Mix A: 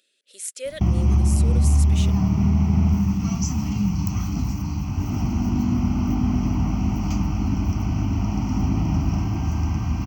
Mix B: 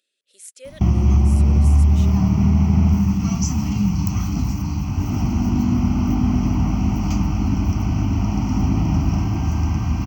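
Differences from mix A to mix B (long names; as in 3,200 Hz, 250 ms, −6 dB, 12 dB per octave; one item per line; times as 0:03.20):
speech −8.0 dB
background +3.0 dB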